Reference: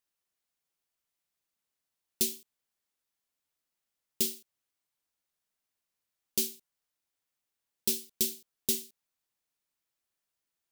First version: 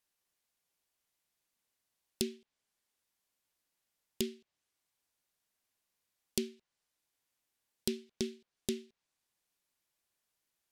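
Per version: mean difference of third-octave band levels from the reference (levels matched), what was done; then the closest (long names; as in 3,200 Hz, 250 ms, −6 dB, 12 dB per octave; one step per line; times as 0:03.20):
8.0 dB: treble cut that deepens with the level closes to 1,700 Hz, closed at −31.5 dBFS
notch filter 1,300 Hz, Q 21
level +3 dB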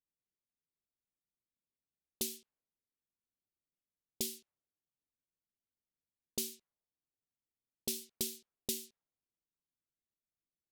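2.5 dB: downward compressor 6 to 1, threshold −28 dBFS, peak gain reduction 6 dB
low-pass that shuts in the quiet parts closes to 330 Hz, open at −34 dBFS
level −1.5 dB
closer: second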